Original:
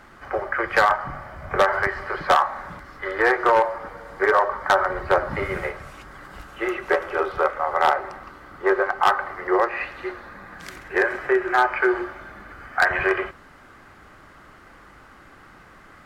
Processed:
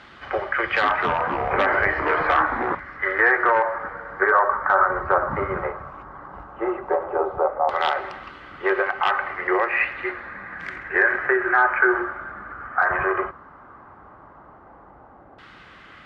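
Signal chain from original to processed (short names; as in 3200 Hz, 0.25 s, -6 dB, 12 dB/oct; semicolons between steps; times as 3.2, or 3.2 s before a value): HPF 45 Hz; high shelf 5400 Hz +11.5 dB; limiter -12.5 dBFS, peak gain reduction 8.5 dB; LFO low-pass saw down 0.13 Hz 750–3500 Hz; 0.61–2.75 echoes that change speed 0.218 s, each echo -4 st, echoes 3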